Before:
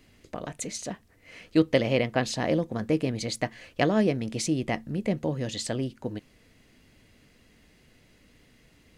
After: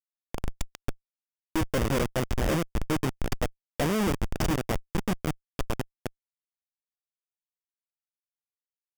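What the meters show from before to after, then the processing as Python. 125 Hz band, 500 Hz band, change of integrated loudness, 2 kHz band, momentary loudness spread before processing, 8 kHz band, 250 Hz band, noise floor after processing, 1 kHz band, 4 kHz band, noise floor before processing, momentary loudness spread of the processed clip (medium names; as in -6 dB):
0.0 dB, -4.5 dB, -2.0 dB, -2.0 dB, 14 LU, -3.5 dB, -3.5 dB, under -85 dBFS, 0.0 dB, -3.0 dB, -60 dBFS, 12 LU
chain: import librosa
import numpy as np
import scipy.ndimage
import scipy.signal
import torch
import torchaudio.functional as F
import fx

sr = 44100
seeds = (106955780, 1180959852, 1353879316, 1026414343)

y = fx.schmitt(x, sr, flips_db=-24.0)
y = fx.notch(y, sr, hz=4100.0, q=6.8)
y = F.gain(torch.from_numpy(y), 5.5).numpy()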